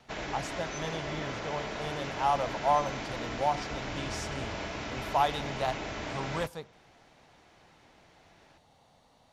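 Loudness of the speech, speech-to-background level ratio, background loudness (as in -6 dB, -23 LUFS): -34.0 LUFS, 3.0 dB, -37.0 LUFS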